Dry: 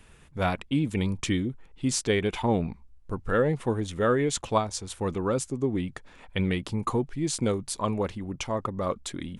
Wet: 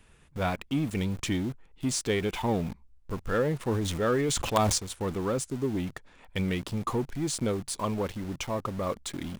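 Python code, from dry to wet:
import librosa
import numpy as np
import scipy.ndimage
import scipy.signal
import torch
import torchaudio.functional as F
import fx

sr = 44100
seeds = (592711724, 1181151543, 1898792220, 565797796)

p1 = fx.quant_companded(x, sr, bits=2)
p2 = x + (p1 * 10.0 ** (-10.5 / 20.0))
p3 = fx.sustainer(p2, sr, db_per_s=27.0, at=(3.57, 4.78))
y = p3 * 10.0 ** (-4.5 / 20.0)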